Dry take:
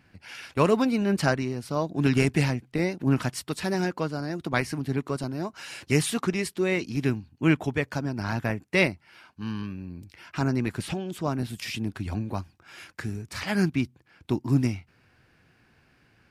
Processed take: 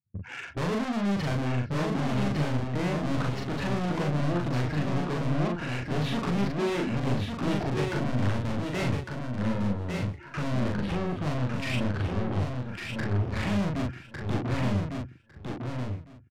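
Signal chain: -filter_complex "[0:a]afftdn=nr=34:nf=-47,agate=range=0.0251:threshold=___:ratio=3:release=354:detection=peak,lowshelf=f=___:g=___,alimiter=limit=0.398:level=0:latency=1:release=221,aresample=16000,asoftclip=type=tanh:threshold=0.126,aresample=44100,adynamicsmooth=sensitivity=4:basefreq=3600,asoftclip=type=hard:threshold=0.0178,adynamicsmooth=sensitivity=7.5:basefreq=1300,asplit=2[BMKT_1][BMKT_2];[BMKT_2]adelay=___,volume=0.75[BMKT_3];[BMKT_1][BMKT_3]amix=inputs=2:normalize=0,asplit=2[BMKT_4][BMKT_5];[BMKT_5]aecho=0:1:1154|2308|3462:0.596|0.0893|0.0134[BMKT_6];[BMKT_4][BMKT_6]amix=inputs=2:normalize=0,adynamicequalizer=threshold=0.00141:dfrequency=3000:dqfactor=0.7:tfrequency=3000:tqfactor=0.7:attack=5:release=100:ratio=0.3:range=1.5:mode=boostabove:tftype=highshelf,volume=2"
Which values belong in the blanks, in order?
0.00178, 440, 8, 40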